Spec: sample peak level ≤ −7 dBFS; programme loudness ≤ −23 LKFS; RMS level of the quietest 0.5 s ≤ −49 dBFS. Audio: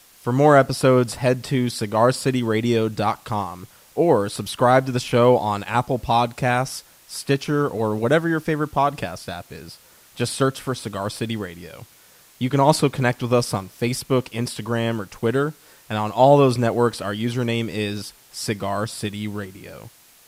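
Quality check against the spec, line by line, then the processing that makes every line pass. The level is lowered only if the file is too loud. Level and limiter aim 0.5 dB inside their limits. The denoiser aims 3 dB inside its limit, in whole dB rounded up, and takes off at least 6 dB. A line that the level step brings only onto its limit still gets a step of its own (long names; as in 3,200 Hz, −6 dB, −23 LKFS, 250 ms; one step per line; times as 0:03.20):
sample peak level −2.5 dBFS: out of spec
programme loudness −21.0 LKFS: out of spec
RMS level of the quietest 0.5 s −52 dBFS: in spec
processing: level −2.5 dB
brickwall limiter −7.5 dBFS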